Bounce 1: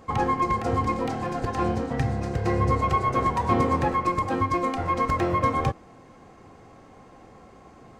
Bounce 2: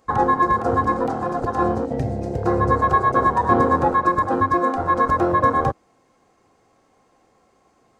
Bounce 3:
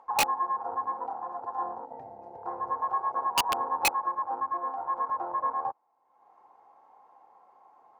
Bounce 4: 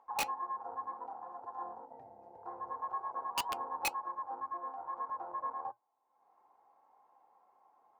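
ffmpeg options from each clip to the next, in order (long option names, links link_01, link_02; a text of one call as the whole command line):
ffmpeg -i in.wav -af "afwtdn=0.0447,bass=frequency=250:gain=-7,treble=frequency=4000:gain=7,volume=7dB" out.wav
ffmpeg -i in.wav -af "acompressor=mode=upward:threshold=-32dB:ratio=2.5,bandpass=frequency=890:width_type=q:width=8.7:csg=0,aeval=exprs='(mod(7.94*val(0)+1,2)-1)/7.94':channel_layout=same" out.wav
ffmpeg -i in.wav -af "flanger=delay=2.7:depth=1.6:regen=-82:speed=2:shape=triangular,volume=-5dB" out.wav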